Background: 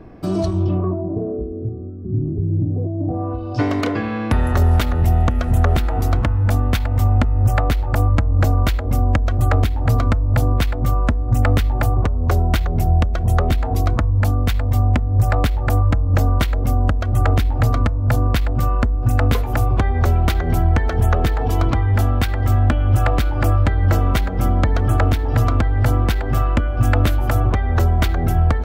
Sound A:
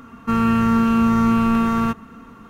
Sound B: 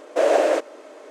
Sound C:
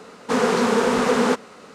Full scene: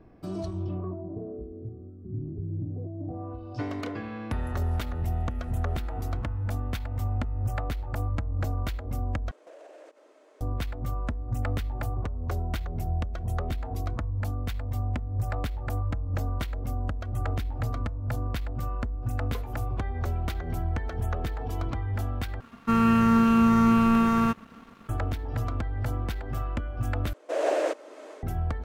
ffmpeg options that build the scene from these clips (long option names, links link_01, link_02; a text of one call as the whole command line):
ffmpeg -i bed.wav -i cue0.wav -i cue1.wav -filter_complex "[2:a]asplit=2[link_01][link_02];[0:a]volume=-13.5dB[link_03];[link_01]acompressor=threshold=-32dB:ratio=6:attack=3.2:release=140:knee=1:detection=peak[link_04];[1:a]aeval=exprs='sgn(val(0))*max(abs(val(0))-0.00501,0)':channel_layout=same[link_05];[link_02]dynaudnorm=framelen=110:gausssize=5:maxgain=15dB[link_06];[link_03]asplit=4[link_07][link_08][link_09][link_10];[link_07]atrim=end=9.314[link_11];[link_04]atrim=end=1.1,asetpts=PTS-STARTPTS,volume=-15dB[link_12];[link_08]atrim=start=10.406:end=22.404[link_13];[link_05]atrim=end=2.49,asetpts=PTS-STARTPTS,volume=-3dB[link_14];[link_09]atrim=start=24.886:end=27.134[link_15];[link_06]atrim=end=1.1,asetpts=PTS-STARTPTS,volume=-12.5dB[link_16];[link_10]atrim=start=28.226[link_17];[link_11][link_12]acrossfade=duration=0.004:curve1=hsin:curve2=hsin[link_18];[link_18][link_13]acrossfade=duration=0.004:curve1=hsin:curve2=hsin[link_19];[link_19][link_14]acrossfade=duration=0.004:curve1=hsin:curve2=hsin[link_20];[link_20][link_15]acrossfade=duration=0.004:curve1=hsin:curve2=hsin[link_21];[link_21][link_16]acrossfade=duration=0.004:curve1=hsin:curve2=hsin[link_22];[link_22][link_17]acrossfade=duration=0.004:curve1=hsin:curve2=hsin" out.wav